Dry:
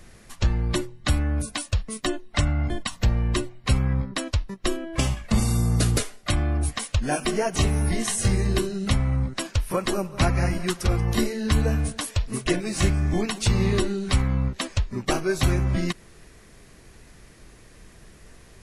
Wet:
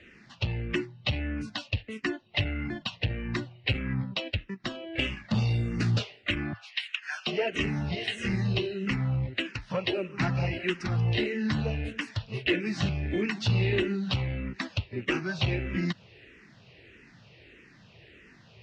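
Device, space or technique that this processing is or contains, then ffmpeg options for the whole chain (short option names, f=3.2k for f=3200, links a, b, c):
barber-pole phaser into a guitar amplifier: -filter_complex "[0:a]asettb=1/sr,asplit=3[a][b][c];[a]atrim=end=6.534[d];[b]atrim=start=6.53:end=7.27,asetpts=PTS-STARTPTS,afade=t=in:d=0.004:c=qsin,afade=t=out:st=0.736:d=0.004:c=qsin,highpass=f=1.2k:w=0.5412,highpass=f=1.2k:w=1.3066[e];[c]atrim=start=7.266[f];[d][e]acrossfade=d=0.004:c1=hsin:c2=qsin[g];[g][f]acrossfade=d=0.004:c1=qsin:c2=hsin,asplit=2[h][i];[i]afreqshift=-1.6[j];[h][j]amix=inputs=2:normalize=1,asoftclip=type=tanh:threshold=-18.5dB,highpass=110,equalizer=f=110:t=q:w=4:g=6,equalizer=f=720:t=q:w=4:g=-3,equalizer=f=1.1k:t=q:w=4:g=-7,equalizer=f=1.9k:t=q:w=4:g=4,equalizer=f=2.7k:t=q:w=4:g=10,lowpass=f=4.6k:w=0.5412,lowpass=f=4.6k:w=1.3066"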